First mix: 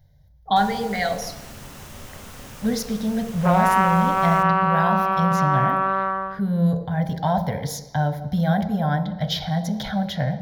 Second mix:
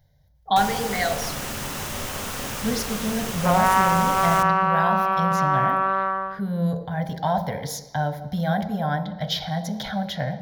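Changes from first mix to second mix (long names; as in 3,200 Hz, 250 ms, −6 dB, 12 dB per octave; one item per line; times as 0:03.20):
first sound +11.5 dB
master: add low-shelf EQ 220 Hz −7 dB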